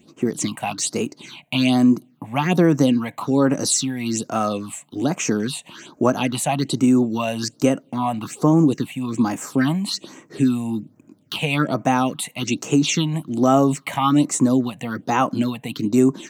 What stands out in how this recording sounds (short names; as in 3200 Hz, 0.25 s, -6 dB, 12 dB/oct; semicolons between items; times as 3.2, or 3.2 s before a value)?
phasing stages 6, 1.2 Hz, lowest notch 340–4100 Hz